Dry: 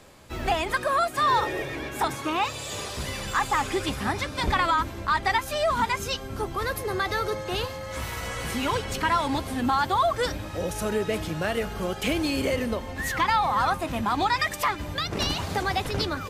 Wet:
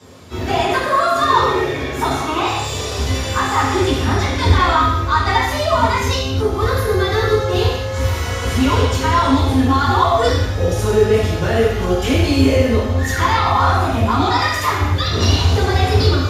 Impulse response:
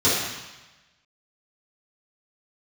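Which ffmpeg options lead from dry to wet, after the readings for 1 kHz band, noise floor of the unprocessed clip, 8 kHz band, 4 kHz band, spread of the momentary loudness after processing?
+8.0 dB, -37 dBFS, +7.5 dB, +8.5 dB, 6 LU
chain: -filter_complex "[0:a]asoftclip=type=tanh:threshold=-14.5dB,asubboost=boost=7:cutoff=60[a];[1:a]atrim=start_sample=2205,afade=t=out:st=0.33:d=0.01,atrim=end_sample=14994[b];[a][b]afir=irnorm=-1:irlink=0,volume=-9dB"

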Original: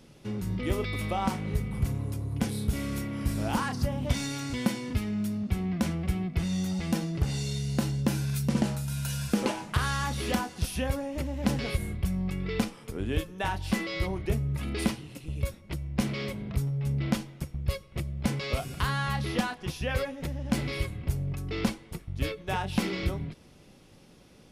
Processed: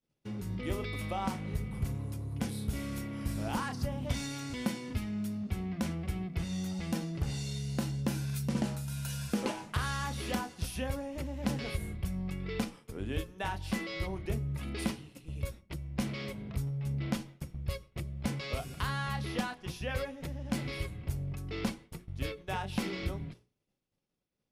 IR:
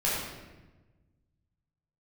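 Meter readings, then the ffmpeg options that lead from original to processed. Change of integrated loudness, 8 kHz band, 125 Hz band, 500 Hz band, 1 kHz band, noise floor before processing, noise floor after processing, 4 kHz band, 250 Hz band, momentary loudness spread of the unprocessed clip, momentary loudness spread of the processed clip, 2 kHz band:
-5.5 dB, -5.0 dB, -5.5 dB, -5.5 dB, -5.0 dB, -54 dBFS, -80 dBFS, -5.0 dB, -5.5 dB, 5 LU, 5 LU, -5.0 dB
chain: -af "agate=range=-33dB:threshold=-39dB:ratio=3:detection=peak,bandreject=f=60:t=h:w=6,bandreject=f=120:t=h:w=6,bandreject=f=180:t=h:w=6,bandreject=f=240:t=h:w=6,bandreject=f=300:t=h:w=6,bandreject=f=360:t=h:w=6,bandreject=f=420:t=h:w=6,volume=-5dB"

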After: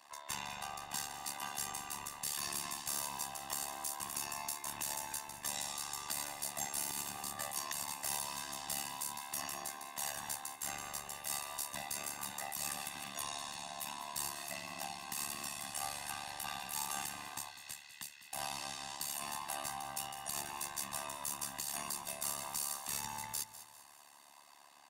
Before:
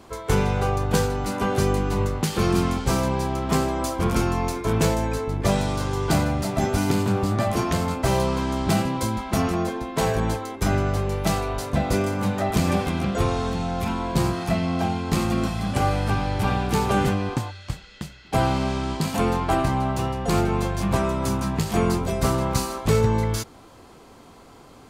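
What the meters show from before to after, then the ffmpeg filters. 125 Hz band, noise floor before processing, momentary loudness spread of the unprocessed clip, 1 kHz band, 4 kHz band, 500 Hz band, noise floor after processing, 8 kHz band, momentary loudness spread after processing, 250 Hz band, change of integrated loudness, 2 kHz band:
-35.0 dB, -48 dBFS, 4 LU, -16.5 dB, -9.0 dB, -28.0 dB, -59 dBFS, -3.0 dB, 6 LU, -32.0 dB, -16.0 dB, -13.5 dB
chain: -filter_complex "[0:a]aderivative,aecho=1:1:1.1:0.93,acrossover=split=750|7600[a][b][c];[c]dynaudnorm=f=420:g=7:m=11.5dB[d];[a][b][d]amix=inputs=3:normalize=0,alimiter=limit=-15.5dB:level=0:latency=1:release=78,tremolo=f=72:d=0.947,acrossover=split=230|3000[e][f][g];[f]acompressor=threshold=-58dB:ratio=1.5[h];[e][h][g]amix=inputs=3:normalize=0,asplit=2[i][j];[j]highpass=f=720:p=1,volume=10dB,asoftclip=type=tanh:threshold=-13dB[k];[i][k]amix=inputs=2:normalize=0,lowpass=f=1.1k:p=1,volume=-6dB,asplit=2[l][m];[m]aecho=0:1:200|400|600|800:0.2|0.0798|0.0319|0.0128[n];[l][n]amix=inputs=2:normalize=0,volume=5dB"

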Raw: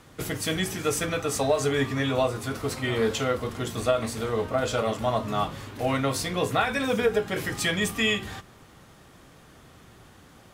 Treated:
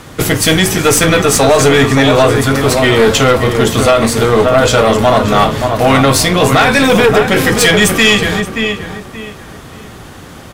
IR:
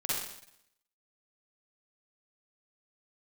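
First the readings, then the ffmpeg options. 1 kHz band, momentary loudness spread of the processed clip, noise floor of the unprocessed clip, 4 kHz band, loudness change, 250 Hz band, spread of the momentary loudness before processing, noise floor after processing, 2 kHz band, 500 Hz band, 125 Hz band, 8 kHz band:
+17.5 dB, 7 LU, -53 dBFS, +17.5 dB, +17.0 dB, +17.5 dB, 6 LU, -33 dBFS, +17.5 dB, +16.5 dB, +17.5 dB, +18.5 dB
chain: -filter_complex "[0:a]asplit=2[a][b];[b]adelay=577,lowpass=f=2.6k:p=1,volume=-8dB,asplit=2[c][d];[d]adelay=577,lowpass=f=2.6k:p=1,volume=0.29,asplit=2[e][f];[f]adelay=577,lowpass=f=2.6k:p=1,volume=0.29[g];[a][c][e][g]amix=inputs=4:normalize=0,aeval=exprs='0.355*(cos(1*acos(clip(val(0)/0.355,-1,1)))-cos(1*PI/2))+0.0562*(cos(4*acos(clip(val(0)/0.355,-1,1)))-cos(4*PI/2))':c=same,apsyclip=20dB,volume=-1.5dB"

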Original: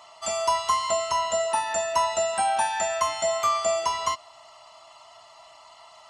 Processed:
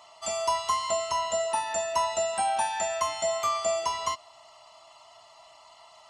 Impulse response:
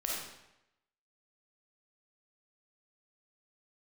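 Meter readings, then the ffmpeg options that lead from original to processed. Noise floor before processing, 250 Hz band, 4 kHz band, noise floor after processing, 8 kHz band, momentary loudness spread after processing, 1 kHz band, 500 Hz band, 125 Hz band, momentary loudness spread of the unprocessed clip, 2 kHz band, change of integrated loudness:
-51 dBFS, -2.5 dB, -2.5 dB, -54 dBFS, -2.5 dB, 3 LU, -3.5 dB, -2.5 dB, -2.5 dB, 3 LU, -4.0 dB, -3.0 dB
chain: -af "equalizer=f=1.5k:t=o:w=0.62:g=-4,volume=-2.5dB"

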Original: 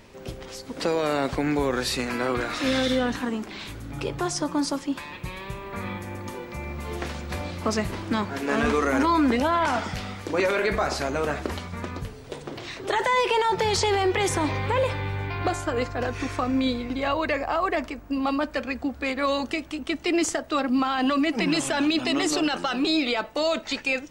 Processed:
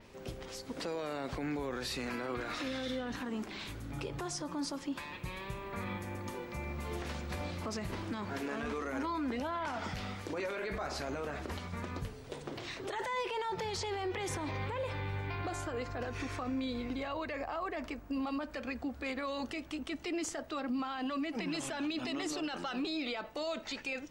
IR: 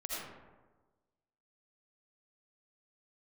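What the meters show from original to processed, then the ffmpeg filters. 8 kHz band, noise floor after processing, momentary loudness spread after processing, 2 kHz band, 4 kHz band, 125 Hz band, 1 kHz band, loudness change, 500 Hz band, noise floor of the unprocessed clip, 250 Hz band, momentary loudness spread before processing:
-12.0 dB, -49 dBFS, 6 LU, -12.5 dB, -12.5 dB, -9.0 dB, -13.0 dB, -12.5 dB, -13.0 dB, -42 dBFS, -12.0 dB, 13 LU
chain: -af "adynamicequalizer=threshold=0.00316:dfrequency=8800:dqfactor=1.2:tfrequency=8800:tqfactor=1.2:attack=5:release=100:ratio=0.375:range=2:mode=cutabove:tftype=bell,alimiter=limit=-23dB:level=0:latency=1:release=72,volume=-6dB"

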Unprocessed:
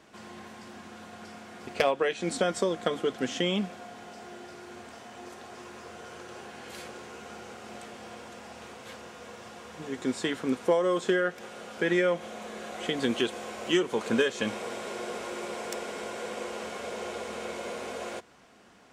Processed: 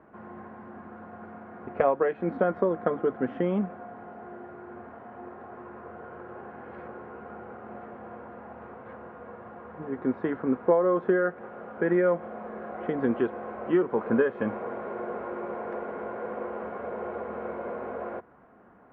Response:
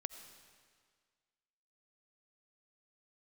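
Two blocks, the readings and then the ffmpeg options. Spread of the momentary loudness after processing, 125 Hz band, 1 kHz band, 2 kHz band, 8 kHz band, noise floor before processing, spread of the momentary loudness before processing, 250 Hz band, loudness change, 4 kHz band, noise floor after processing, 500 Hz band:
20 LU, +2.5 dB, +2.0 dB, -3.5 dB, under -35 dB, -48 dBFS, 19 LU, +2.5 dB, +1.5 dB, under -20 dB, -47 dBFS, +2.5 dB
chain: -af "lowpass=f=1.5k:w=0.5412,lowpass=f=1.5k:w=1.3066,volume=2.5dB"

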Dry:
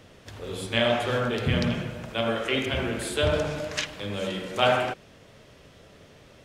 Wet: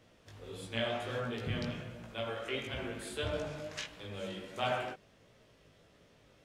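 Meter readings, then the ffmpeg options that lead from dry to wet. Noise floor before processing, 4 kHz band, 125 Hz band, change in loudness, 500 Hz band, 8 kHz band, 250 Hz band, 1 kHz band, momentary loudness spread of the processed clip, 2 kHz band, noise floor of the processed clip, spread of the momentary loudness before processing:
-53 dBFS, -11.5 dB, -11.5 dB, -11.5 dB, -11.5 dB, -11.5 dB, -12.0 dB, -11.0 dB, 10 LU, -11.5 dB, -64 dBFS, 10 LU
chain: -af "flanger=delay=17:depth=2.8:speed=1.5,volume=-8.5dB"

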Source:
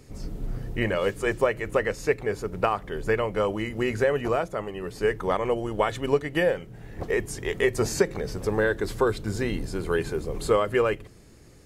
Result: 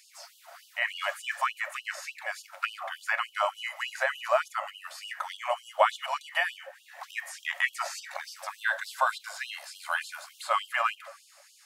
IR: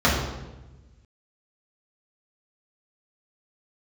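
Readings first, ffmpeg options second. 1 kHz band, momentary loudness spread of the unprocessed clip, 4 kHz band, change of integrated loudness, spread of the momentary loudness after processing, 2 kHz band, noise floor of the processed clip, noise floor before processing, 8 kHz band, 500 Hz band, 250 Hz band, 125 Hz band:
+1.0 dB, 8 LU, +1.5 dB, -4.5 dB, 13 LU, +1.0 dB, -59 dBFS, -50 dBFS, -4.0 dB, -12.0 dB, under -40 dB, under -40 dB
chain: -filter_complex "[0:a]acrossover=split=3000[a][b];[b]acompressor=threshold=-45dB:ratio=4:attack=1:release=60[c];[a][c]amix=inputs=2:normalize=0,asplit=2[d][e];[1:a]atrim=start_sample=2205[f];[e][f]afir=irnorm=-1:irlink=0,volume=-31dB[g];[d][g]amix=inputs=2:normalize=0,afftfilt=real='re*gte(b*sr/1024,530*pow(2800/530,0.5+0.5*sin(2*PI*3.4*pts/sr)))':imag='im*gte(b*sr/1024,530*pow(2800/530,0.5+0.5*sin(2*PI*3.4*pts/sr)))':win_size=1024:overlap=0.75,volume=4dB"

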